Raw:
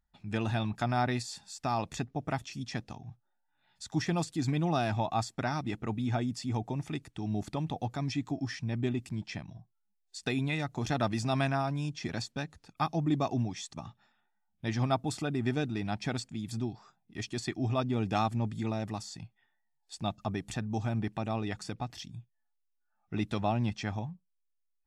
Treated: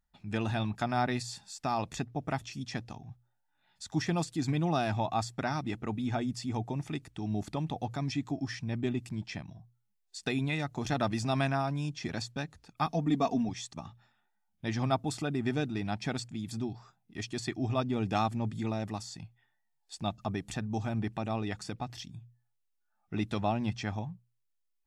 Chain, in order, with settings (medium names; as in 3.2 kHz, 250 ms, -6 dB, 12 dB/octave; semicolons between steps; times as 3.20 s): hum notches 60/120 Hz; 12.86–13.49 s: comb 4.3 ms, depth 70%